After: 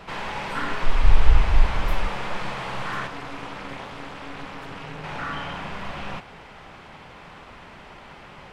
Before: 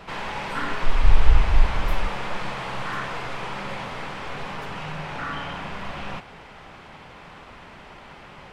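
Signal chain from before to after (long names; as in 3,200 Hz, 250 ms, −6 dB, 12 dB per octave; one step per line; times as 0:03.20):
0:03.07–0:05.04: amplitude modulation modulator 280 Hz, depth 95%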